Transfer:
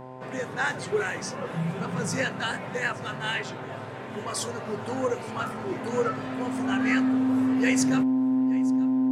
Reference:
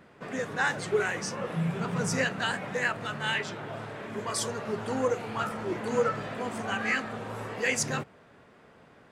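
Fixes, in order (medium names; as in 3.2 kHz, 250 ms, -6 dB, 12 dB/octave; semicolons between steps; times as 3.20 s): de-hum 128.5 Hz, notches 8; band-stop 260 Hz, Q 30; inverse comb 873 ms -20.5 dB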